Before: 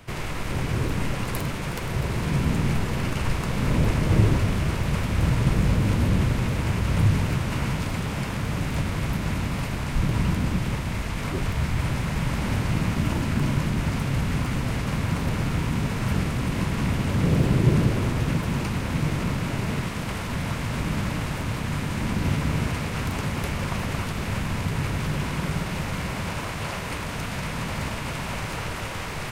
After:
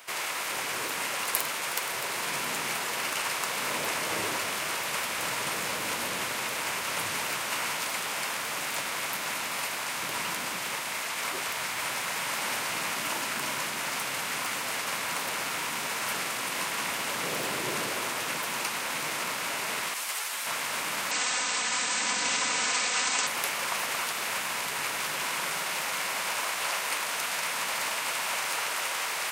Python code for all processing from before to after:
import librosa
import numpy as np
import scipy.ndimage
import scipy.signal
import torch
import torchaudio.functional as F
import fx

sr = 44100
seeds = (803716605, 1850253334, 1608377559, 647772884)

y = fx.chain(x, sr, fx.highpass(hz=620.0, slope=6),
    fx.high_shelf(hz=5400.0, db=6.5),
    fx.ensemble(), at=(19.94, 20.47))
y = fx.chain(y, sr, fx.cheby1_lowpass(hz=8400.0, order=10),
    fx.high_shelf(hz=4600.0, db=10.5),
    fx.comb(ms=4.0, depth=0.56), at=(21.11, 23.27))
y = scipy.signal.sosfilt(scipy.signal.butter(2, 730.0, 'highpass', fs=sr, output='sos'), y)
y = fx.high_shelf(y, sr, hz=5700.0, db=9.5)
y = y * 10.0 ** (2.0 / 20.0)